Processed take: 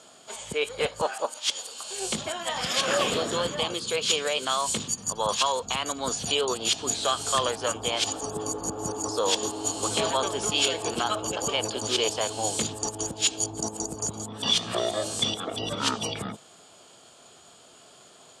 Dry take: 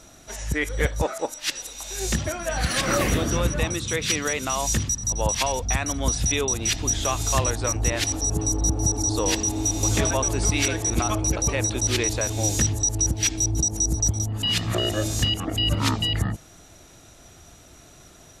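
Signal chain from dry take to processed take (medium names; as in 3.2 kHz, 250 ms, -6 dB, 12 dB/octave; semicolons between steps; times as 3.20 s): formant shift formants +3 st; cabinet simulation 250–9400 Hz, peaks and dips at 310 Hz -8 dB, 450 Hz +3 dB, 1.1 kHz +3 dB, 2 kHz -8 dB, 3.2 kHz +8 dB; trim -1.5 dB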